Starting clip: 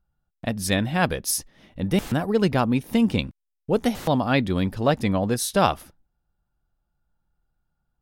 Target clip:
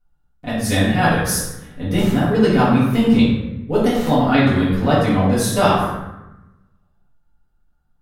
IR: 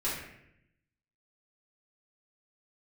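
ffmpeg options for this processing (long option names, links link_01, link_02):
-filter_complex "[0:a]bandreject=frequency=60:width_type=h:width=6,bandreject=frequency=120:width_type=h:width=6,bandreject=frequency=180:width_type=h:width=6[link_01];[1:a]atrim=start_sample=2205,asetrate=33075,aresample=44100[link_02];[link_01][link_02]afir=irnorm=-1:irlink=0,volume=-2.5dB"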